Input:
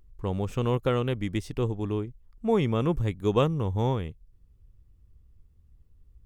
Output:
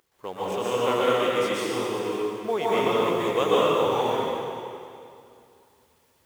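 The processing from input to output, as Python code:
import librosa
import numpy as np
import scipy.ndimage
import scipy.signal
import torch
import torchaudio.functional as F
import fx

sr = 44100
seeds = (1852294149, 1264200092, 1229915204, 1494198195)

y = fx.law_mismatch(x, sr, coded='mu')
y = scipy.signal.sosfilt(scipy.signal.butter(2, 480.0, 'highpass', fs=sr, output='sos'), y)
y = fx.rev_plate(y, sr, seeds[0], rt60_s=2.5, hf_ratio=0.9, predelay_ms=110, drr_db=-8.5)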